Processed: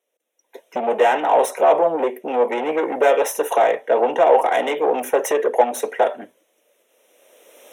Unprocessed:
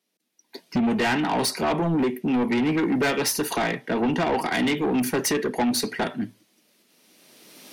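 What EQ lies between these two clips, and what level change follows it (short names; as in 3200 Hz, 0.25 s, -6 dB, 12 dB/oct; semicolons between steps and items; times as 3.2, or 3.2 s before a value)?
dynamic EQ 770 Hz, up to +7 dB, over -39 dBFS, Q 1.1; resonant high-pass 520 Hz, resonance Q 4.9; Butterworth band-stop 4600 Hz, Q 2.1; -1.5 dB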